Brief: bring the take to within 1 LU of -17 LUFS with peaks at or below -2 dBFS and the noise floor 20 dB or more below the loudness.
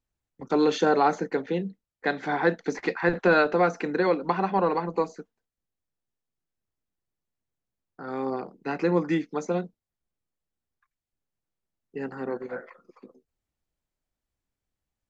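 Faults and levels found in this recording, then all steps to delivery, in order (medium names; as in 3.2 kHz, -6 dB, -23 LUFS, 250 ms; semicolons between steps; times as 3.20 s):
loudness -26.0 LUFS; peak level -9.5 dBFS; loudness target -17.0 LUFS
-> trim +9 dB; peak limiter -2 dBFS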